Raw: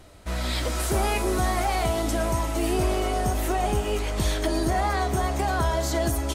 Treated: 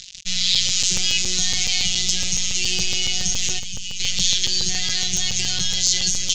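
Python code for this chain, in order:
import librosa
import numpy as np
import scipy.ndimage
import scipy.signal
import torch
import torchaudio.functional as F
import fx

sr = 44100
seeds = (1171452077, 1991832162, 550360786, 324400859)

y = np.sign(x) * np.maximum(np.abs(x) - 10.0 ** (-43.0 / 20.0), 0.0)
y = fx.tone_stack(y, sr, knobs='6-0-2', at=(3.58, 3.99), fade=0.02)
y = fx.robotise(y, sr, hz=183.0)
y = fx.curve_eq(y, sr, hz=(120.0, 250.0, 1100.0, 2900.0, 6900.0, 10000.0), db=(0, -19, -29, 10, 14, -28))
y = fx.buffer_crackle(y, sr, first_s=0.55, period_s=0.14, block=128, kind='zero')
y = fx.env_flatten(y, sr, amount_pct=50)
y = y * 10.0 ** (6.0 / 20.0)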